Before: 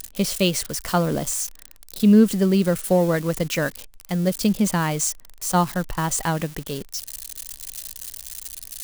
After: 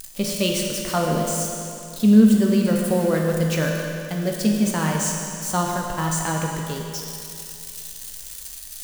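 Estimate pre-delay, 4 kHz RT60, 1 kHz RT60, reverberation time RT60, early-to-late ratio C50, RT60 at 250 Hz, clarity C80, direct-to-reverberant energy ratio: 9 ms, 2.5 s, 2.6 s, 2.6 s, 1.5 dB, 2.6 s, 2.5 dB, -0.5 dB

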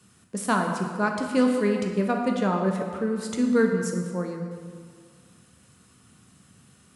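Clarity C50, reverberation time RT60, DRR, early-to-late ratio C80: 4.0 dB, 1.9 s, 2.0 dB, 5.5 dB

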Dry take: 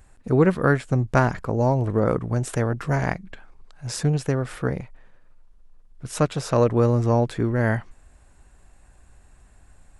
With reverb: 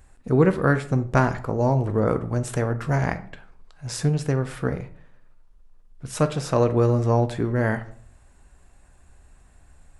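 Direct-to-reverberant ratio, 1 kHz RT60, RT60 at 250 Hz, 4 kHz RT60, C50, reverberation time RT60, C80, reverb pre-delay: 9.5 dB, 0.50 s, 0.70 s, 0.35 s, 14.5 dB, 0.50 s, 19.0 dB, 6 ms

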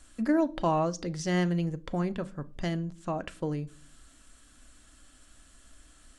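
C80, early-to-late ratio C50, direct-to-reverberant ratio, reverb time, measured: 28.5 dB, 23.5 dB, 10.5 dB, 0.40 s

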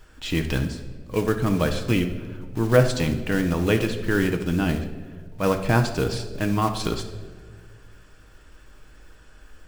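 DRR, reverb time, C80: 5.0 dB, not exponential, 12.0 dB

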